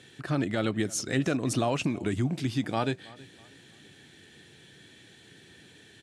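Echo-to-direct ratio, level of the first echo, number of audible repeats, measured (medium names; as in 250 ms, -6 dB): -21.5 dB, -22.0 dB, 2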